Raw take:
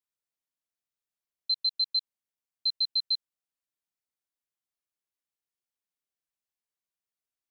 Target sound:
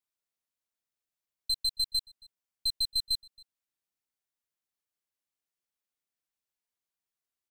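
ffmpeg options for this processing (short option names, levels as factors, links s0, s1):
-filter_complex "[0:a]aeval=exprs='clip(val(0),-1,0.0335)':c=same,asplit=2[s0][s1];[s1]adelay=274.1,volume=0.0794,highshelf=f=4000:g=-6.17[s2];[s0][s2]amix=inputs=2:normalize=0"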